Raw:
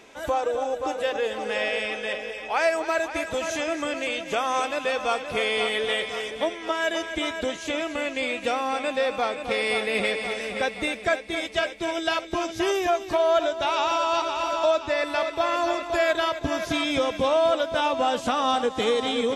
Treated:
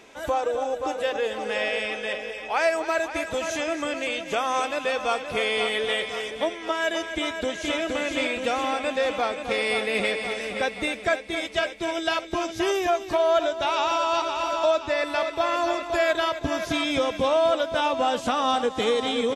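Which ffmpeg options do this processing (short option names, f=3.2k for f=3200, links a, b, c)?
-filter_complex "[0:a]asplit=2[a][b];[b]afade=t=in:st=7.07:d=0.01,afade=t=out:st=7.8:d=0.01,aecho=0:1:470|940|1410|1880|2350|2820|3290|3760|4230|4700:0.707946|0.460165|0.299107|0.19442|0.126373|0.0821423|0.0533925|0.0347051|0.0225583|0.0146629[c];[a][c]amix=inputs=2:normalize=0"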